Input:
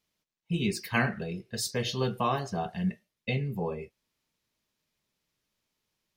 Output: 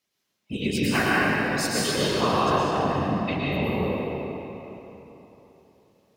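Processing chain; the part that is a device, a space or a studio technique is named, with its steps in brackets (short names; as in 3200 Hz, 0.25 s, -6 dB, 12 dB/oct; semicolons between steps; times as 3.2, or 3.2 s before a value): whispering ghost (whisperiser; HPF 210 Hz 6 dB/oct; reverb RT60 3.5 s, pre-delay 0.102 s, DRR -7 dB); gain +1.5 dB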